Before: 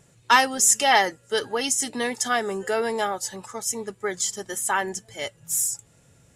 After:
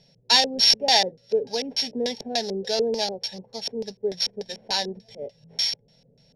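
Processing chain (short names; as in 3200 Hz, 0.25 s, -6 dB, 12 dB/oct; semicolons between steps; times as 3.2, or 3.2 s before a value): sample sorter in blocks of 8 samples; LFO low-pass square 3.4 Hz 410–4600 Hz; fixed phaser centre 330 Hz, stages 6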